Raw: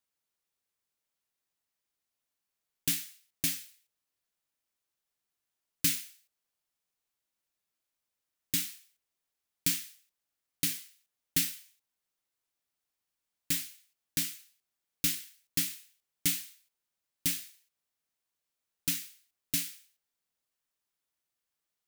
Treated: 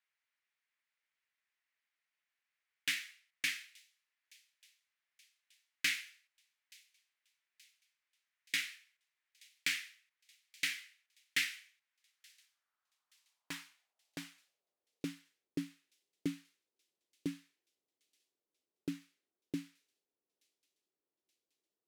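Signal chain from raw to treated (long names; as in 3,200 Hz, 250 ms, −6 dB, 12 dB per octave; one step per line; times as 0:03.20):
on a send: delay with a high-pass on its return 876 ms, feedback 62%, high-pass 3,800 Hz, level −21.5 dB
on the sum: band-pass filter sweep 2,000 Hz → 370 Hz, 0:11.91–0:15.43
level +9 dB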